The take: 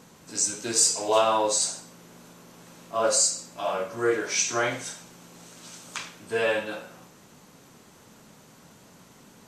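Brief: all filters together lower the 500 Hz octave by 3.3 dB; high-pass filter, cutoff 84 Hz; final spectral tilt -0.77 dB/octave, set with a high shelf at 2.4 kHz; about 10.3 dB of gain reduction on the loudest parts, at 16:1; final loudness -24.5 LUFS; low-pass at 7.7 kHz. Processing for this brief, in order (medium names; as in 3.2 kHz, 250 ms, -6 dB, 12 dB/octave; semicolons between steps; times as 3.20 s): high-pass 84 Hz; low-pass 7.7 kHz; peaking EQ 500 Hz -4.5 dB; treble shelf 2.4 kHz +6.5 dB; compression 16:1, threshold -23 dBFS; trim +4 dB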